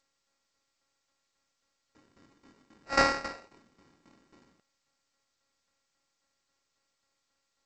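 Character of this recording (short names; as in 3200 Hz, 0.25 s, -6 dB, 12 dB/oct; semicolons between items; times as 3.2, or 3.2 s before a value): a buzz of ramps at a fixed pitch in blocks of 32 samples; tremolo saw down 3.7 Hz, depth 80%; aliases and images of a low sample rate 3300 Hz, jitter 0%; G.722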